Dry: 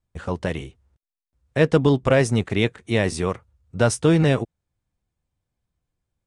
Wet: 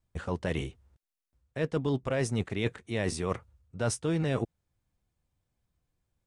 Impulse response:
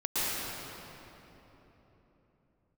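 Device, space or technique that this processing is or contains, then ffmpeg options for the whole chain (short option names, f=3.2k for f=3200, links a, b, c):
compression on the reversed sound: -af "areverse,acompressor=threshold=-27dB:ratio=6,areverse"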